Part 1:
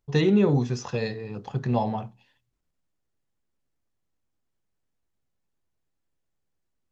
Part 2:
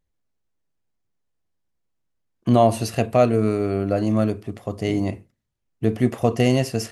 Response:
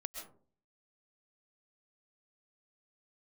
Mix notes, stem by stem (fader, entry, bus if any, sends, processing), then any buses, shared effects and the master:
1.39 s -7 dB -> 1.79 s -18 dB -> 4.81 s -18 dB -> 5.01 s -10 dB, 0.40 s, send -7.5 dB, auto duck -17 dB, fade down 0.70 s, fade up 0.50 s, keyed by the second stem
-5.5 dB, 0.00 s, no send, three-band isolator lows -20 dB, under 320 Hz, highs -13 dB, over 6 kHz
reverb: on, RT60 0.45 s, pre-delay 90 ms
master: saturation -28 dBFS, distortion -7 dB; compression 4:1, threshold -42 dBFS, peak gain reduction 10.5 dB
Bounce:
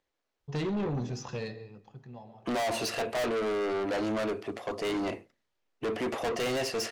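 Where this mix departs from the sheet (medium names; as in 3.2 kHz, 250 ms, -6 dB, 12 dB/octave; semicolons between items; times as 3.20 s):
stem 2 -5.5 dB -> +5.5 dB; master: missing compression 4:1, threshold -42 dBFS, peak gain reduction 10.5 dB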